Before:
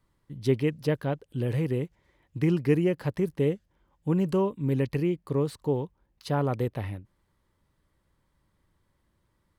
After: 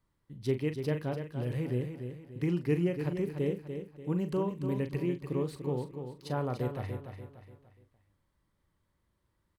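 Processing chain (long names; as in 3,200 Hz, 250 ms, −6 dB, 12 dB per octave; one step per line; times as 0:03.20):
double-tracking delay 40 ms −10 dB
repeating echo 292 ms, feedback 39%, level −8 dB
level −6.5 dB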